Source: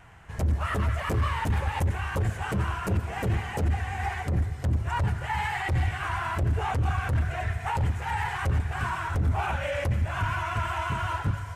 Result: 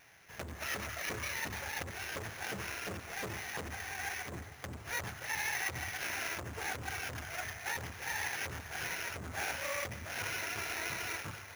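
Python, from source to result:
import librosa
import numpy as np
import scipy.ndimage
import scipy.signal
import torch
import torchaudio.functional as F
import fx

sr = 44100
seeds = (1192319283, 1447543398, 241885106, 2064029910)

y = fx.lower_of_two(x, sr, delay_ms=0.45)
y = fx.highpass(y, sr, hz=880.0, slope=6)
y = fx.sample_hold(y, sr, seeds[0], rate_hz=8100.0, jitter_pct=0)
y = F.gain(torch.from_numpy(y), -2.0).numpy()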